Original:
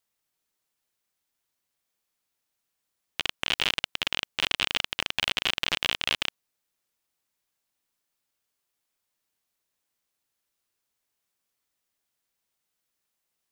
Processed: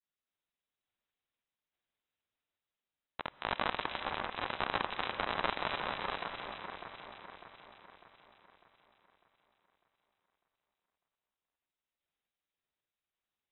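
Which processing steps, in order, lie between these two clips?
random-step tremolo; grains 0.1 s, spray 14 ms, pitch spread up and down by 0 st; echo with dull and thin repeats by turns 0.3 s, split 1700 Hz, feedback 69%, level -4 dB; non-linear reverb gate 0.45 s rising, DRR 10 dB; inverted band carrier 3900 Hz; gain -4 dB

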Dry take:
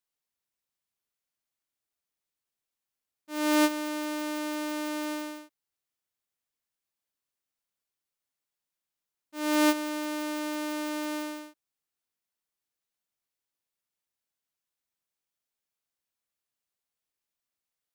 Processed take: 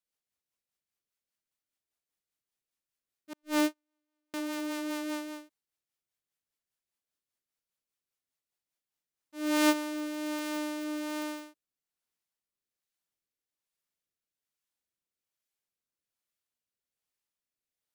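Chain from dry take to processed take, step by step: 3.33–4.34 gate -23 dBFS, range -51 dB; rotary speaker horn 5 Hz, later 1.2 Hz, at 8.76

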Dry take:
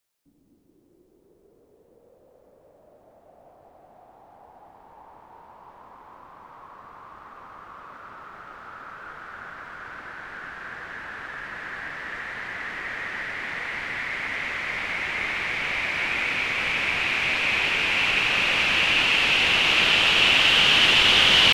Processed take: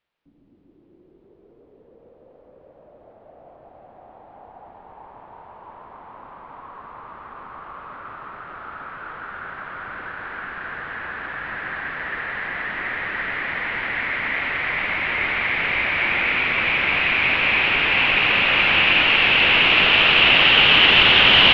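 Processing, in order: LPF 3400 Hz 24 dB/oct; on a send: echo with dull and thin repeats by turns 0.139 s, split 1300 Hz, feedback 90%, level -7.5 dB; on the sum: gain +4 dB

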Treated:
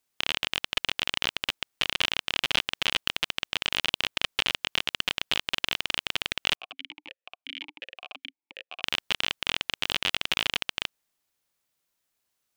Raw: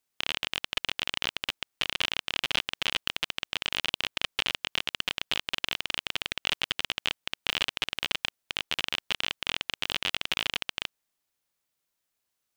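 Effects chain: 6.55–8.83 vowel sequencer 5.6 Hz; gain +2.5 dB

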